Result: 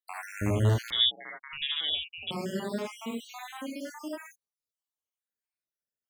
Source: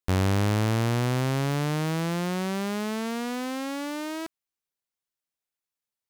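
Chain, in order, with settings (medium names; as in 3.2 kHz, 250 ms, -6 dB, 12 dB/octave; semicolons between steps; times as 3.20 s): random holes in the spectrogram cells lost 81%; gated-style reverb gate 100 ms rising, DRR -2.5 dB; 0.90–2.31 s: frequency inversion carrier 3.6 kHz; trim -4 dB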